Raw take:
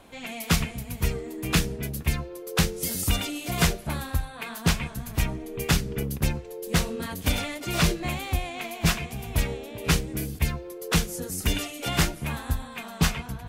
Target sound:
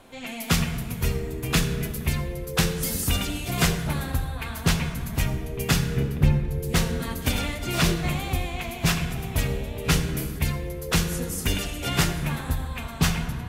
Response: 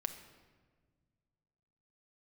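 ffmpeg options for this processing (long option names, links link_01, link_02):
-filter_complex "[0:a]asettb=1/sr,asplit=3[link_01][link_02][link_03];[link_01]atrim=end=5.964[link_04];[link_02]atrim=start=5.96:end=6.48,asetpts=PTS-STARTPTS,afade=type=in:duration=0.004:curve=qsin,afade=type=out:start_time=0.516:duration=0.004:curve=qsin,bass=frequency=250:gain=6,treble=frequency=4000:gain=-12[link_05];[link_03]atrim=start=6.476[link_06];[link_04][link_05]acrossfade=duration=0.004:curve1=hsin:curve2=qsin[link_07];[link_07][link_06]acrossfade=duration=0.004:curve1=qsin:curve2=hsin[link_08];[1:a]atrim=start_sample=2205,asetrate=32634,aresample=44100[link_09];[link_08][link_09]afir=irnorm=-1:irlink=0"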